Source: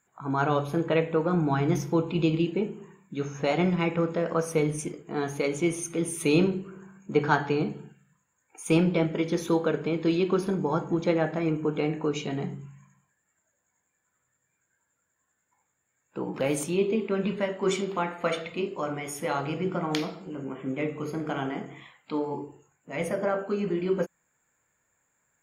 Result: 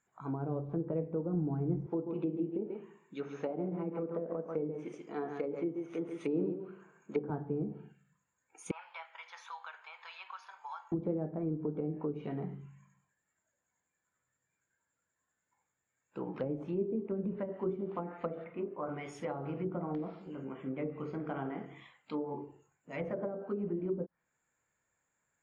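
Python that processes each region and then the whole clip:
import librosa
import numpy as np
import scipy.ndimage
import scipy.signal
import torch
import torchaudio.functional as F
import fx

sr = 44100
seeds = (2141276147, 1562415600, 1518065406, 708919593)

y = fx.chain(x, sr, fx.self_delay(depth_ms=0.056),
    fx.highpass(hz=260.0, slope=12),
    fx.echo_single(ms=137, db=-7.0), at=(1.86, 7.3))
y = fx.chain(y, sr, fx.ellip_highpass(hz=870.0, order=4, stop_db=60),
    fx.high_shelf(hz=2200.0, db=-11.5),
    fx.band_squash(depth_pct=70), at=(8.71, 10.92))
y = fx.chain(y, sr, fx.lowpass(hz=1900.0, slope=24),
    fx.peak_eq(hz=69.0, db=-15.0, octaves=1.1), at=(18.44, 18.89))
y = scipy.signal.sosfilt(scipy.signal.butter(2, 7400.0, 'lowpass', fs=sr, output='sos'), y)
y = fx.env_lowpass_down(y, sr, base_hz=430.0, full_db=-23.0)
y = F.gain(torch.from_numpy(y), -7.0).numpy()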